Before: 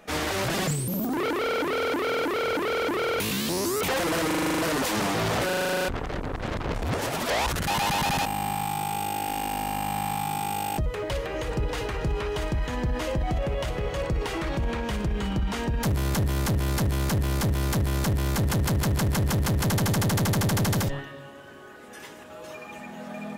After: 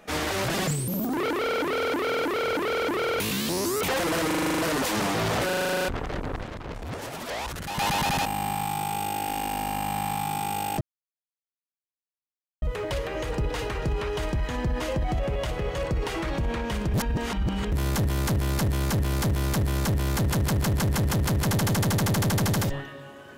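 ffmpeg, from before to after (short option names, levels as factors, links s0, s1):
-filter_complex "[0:a]asplit=6[s0][s1][s2][s3][s4][s5];[s0]atrim=end=6.432[s6];[s1]atrim=start=6.428:end=7.782,asetpts=PTS-STARTPTS,volume=0.447[s7];[s2]atrim=start=7.778:end=10.81,asetpts=PTS-STARTPTS,afade=t=out:st=3.028:d=0.004:c=hsin,apad=pad_dur=1.81[s8];[s3]atrim=start=10.81:end=15.132,asetpts=PTS-STARTPTS,afade=t=in:d=0.004:c=hsin[s9];[s4]atrim=start=15.128:end=15.912,asetpts=PTS-STARTPTS,areverse[s10];[s5]atrim=start=15.908[s11];[s6][s7]acrossfade=d=0.004:c1=hsin:c2=hsin[s12];[s8][s9]concat=n=2:v=0:a=1[s13];[s12][s13]acrossfade=d=0.004:c1=hsin:c2=hsin[s14];[s14][s10]acrossfade=d=0.004:c1=hsin:c2=hsin[s15];[s15][s11]acrossfade=d=0.004:c1=hsin:c2=hsin"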